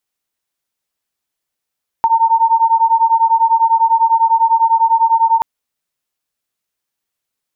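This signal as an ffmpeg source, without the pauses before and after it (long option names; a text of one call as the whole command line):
ffmpeg -f lavfi -i "aevalsrc='0.251*(sin(2*PI*904*t)+sin(2*PI*914*t))':duration=3.38:sample_rate=44100" out.wav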